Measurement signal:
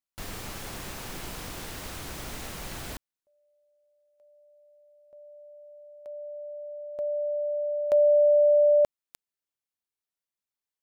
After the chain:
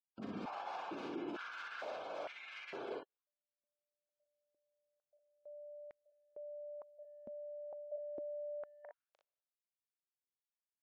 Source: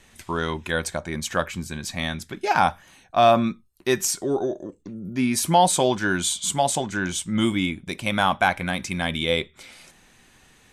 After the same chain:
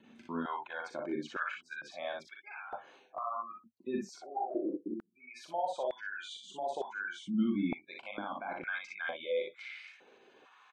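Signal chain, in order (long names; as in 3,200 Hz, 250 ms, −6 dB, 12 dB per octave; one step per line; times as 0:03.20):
dynamic equaliser 1,100 Hz, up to +3 dB, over −35 dBFS, Q 0.9
noise gate with hold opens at −55 dBFS, hold 158 ms, range −15 dB
notch filter 1,900 Hz, Q 7.3
gate on every frequency bin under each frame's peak −20 dB strong
brickwall limiter −14 dBFS
reversed playback
downward compressor 4 to 1, threshold −34 dBFS
reversed playback
high-frequency loss of the air 210 metres
on a send: ambience of single reflections 40 ms −5.5 dB, 60 ms −3.5 dB
on the sum: high-pass on a step sequencer 2.2 Hz 230–2,000 Hz
level −6 dB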